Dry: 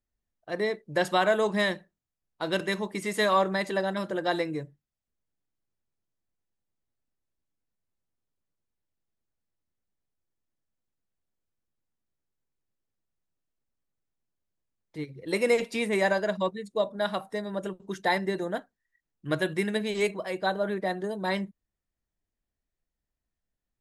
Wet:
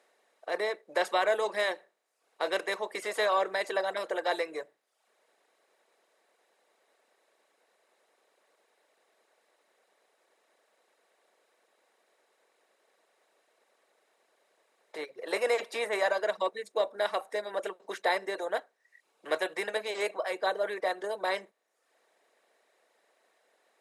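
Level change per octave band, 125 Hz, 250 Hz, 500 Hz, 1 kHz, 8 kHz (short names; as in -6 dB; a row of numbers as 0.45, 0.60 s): under -25 dB, -14.0 dB, -2.5 dB, -2.0 dB, -2.5 dB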